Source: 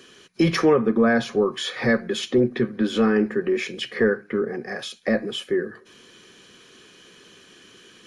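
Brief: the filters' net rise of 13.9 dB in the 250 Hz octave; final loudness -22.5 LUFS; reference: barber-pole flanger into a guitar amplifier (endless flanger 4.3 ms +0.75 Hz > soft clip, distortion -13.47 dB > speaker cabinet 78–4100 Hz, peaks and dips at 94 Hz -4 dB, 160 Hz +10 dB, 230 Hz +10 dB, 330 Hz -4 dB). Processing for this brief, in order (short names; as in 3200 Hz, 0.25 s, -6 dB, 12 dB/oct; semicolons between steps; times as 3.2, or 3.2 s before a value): bell 250 Hz +6.5 dB; endless flanger 4.3 ms +0.75 Hz; soft clip -14.5 dBFS; speaker cabinet 78–4100 Hz, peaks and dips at 94 Hz -4 dB, 160 Hz +10 dB, 230 Hz +10 dB, 330 Hz -4 dB; gain -5 dB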